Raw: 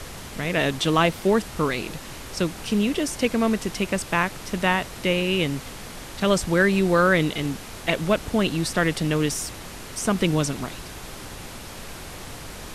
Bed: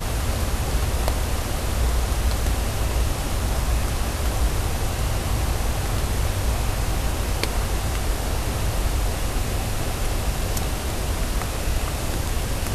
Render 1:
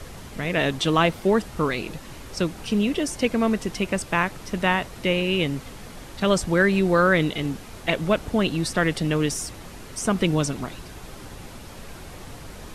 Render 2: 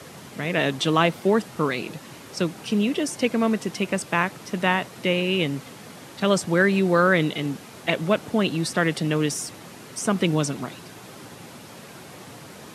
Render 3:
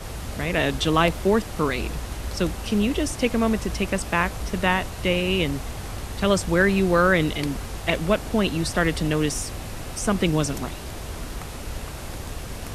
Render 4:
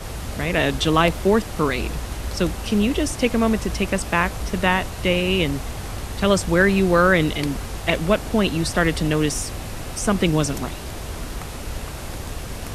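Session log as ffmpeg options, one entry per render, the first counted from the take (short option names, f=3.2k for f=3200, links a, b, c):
-af "afftdn=nr=6:nf=-38"
-af "highpass=f=120:w=0.5412,highpass=f=120:w=1.3066"
-filter_complex "[1:a]volume=-9.5dB[a];[0:a][a]amix=inputs=2:normalize=0"
-af "volume=2.5dB,alimiter=limit=-3dB:level=0:latency=1"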